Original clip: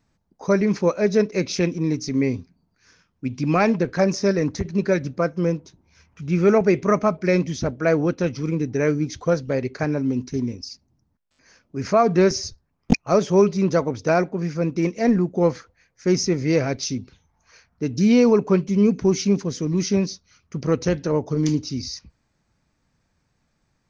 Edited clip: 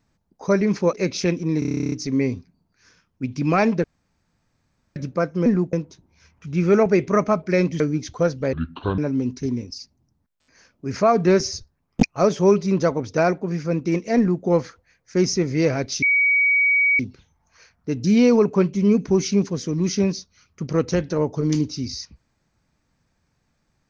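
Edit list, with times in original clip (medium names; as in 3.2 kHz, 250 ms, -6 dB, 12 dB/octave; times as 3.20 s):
0.93–1.28 s: delete
1.94 s: stutter 0.03 s, 12 plays
3.86–4.98 s: room tone
7.55–8.87 s: delete
9.60–9.89 s: speed 64%
15.08–15.35 s: copy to 5.48 s
16.93 s: add tone 2.26 kHz -14.5 dBFS 0.97 s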